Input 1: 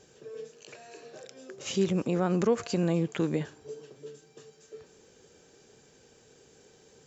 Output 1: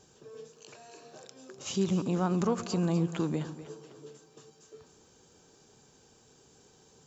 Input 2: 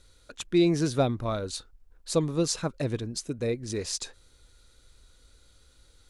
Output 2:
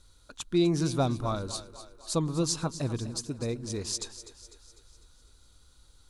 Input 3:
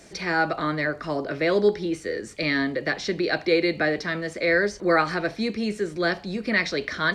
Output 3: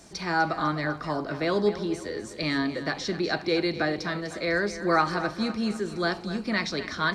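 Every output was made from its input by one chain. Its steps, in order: graphic EQ 500/1000/2000 Hz -7/+5/-8 dB; split-band echo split 360 Hz, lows 0.112 s, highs 0.25 s, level -13 dB

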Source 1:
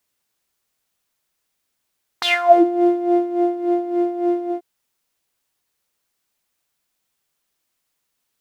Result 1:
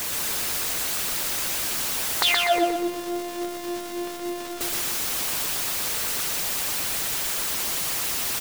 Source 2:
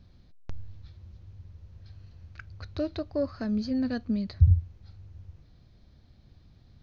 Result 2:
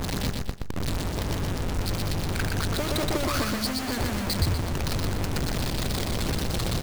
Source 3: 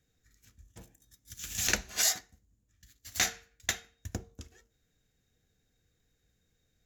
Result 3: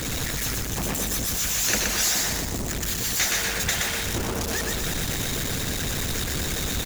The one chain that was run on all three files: zero-crossing step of -18 dBFS; harmonic-percussive split harmonic -13 dB; feedback echo 0.122 s, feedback 42%, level -3 dB

